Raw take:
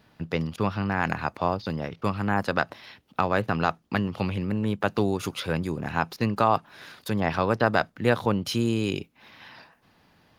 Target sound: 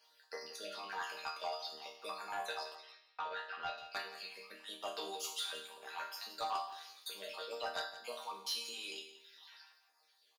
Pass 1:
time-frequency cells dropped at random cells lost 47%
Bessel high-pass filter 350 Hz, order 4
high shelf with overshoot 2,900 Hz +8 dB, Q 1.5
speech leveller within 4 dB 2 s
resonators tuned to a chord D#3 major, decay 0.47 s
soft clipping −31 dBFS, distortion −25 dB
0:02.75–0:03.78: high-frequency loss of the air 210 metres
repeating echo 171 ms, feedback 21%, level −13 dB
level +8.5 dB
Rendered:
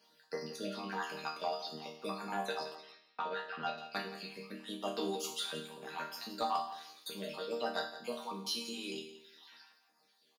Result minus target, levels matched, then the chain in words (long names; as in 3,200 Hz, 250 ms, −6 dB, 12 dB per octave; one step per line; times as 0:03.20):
250 Hz band +14.0 dB; soft clipping: distortion −10 dB
time-frequency cells dropped at random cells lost 47%
Bessel high-pass filter 760 Hz, order 4
high shelf with overshoot 2,900 Hz +8 dB, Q 1.5
speech leveller within 4 dB 2 s
resonators tuned to a chord D#3 major, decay 0.47 s
soft clipping −39.5 dBFS, distortion −15 dB
0:02.75–0:03.78: high-frequency loss of the air 210 metres
repeating echo 171 ms, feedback 21%, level −13 dB
level +8.5 dB